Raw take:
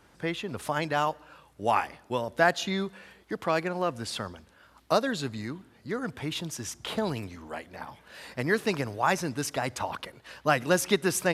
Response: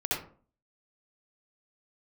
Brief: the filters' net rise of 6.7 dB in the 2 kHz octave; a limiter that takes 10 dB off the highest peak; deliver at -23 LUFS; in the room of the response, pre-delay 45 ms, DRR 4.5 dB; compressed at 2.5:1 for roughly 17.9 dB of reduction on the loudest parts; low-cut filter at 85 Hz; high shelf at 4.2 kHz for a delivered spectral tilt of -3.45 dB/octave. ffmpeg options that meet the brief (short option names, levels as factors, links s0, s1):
-filter_complex "[0:a]highpass=85,equalizer=f=2000:t=o:g=8,highshelf=f=4200:g=3.5,acompressor=threshold=0.00708:ratio=2.5,alimiter=level_in=2.51:limit=0.0631:level=0:latency=1,volume=0.398,asplit=2[s0][s1];[1:a]atrim=start_sample=2205,adelay=45[s2];[s1][s2]afir=irnorm=-1:irlink=0,volume=0.251[s3];[s0][s3]amix=inputs=2:normalize=0,volume=9.44"